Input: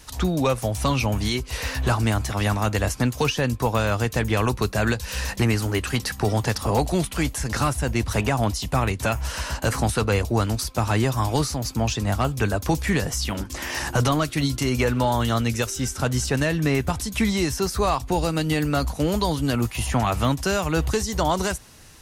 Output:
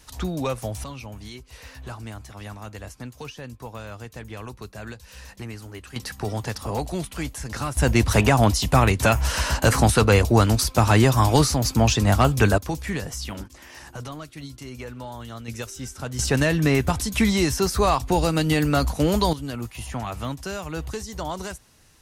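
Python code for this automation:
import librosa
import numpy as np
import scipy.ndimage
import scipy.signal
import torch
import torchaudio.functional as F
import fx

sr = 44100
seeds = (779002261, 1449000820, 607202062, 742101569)

y = fx.gain(x, sr, db=fx.steps((0.0, -5.0), (0.84, -15.0), (5.96, -6.0), (7.77, 5.0), (12.58, -6.0), (13.48, -15.0), (15.48, -8.5), (16.19, 2.0), (19.33, -8.5)))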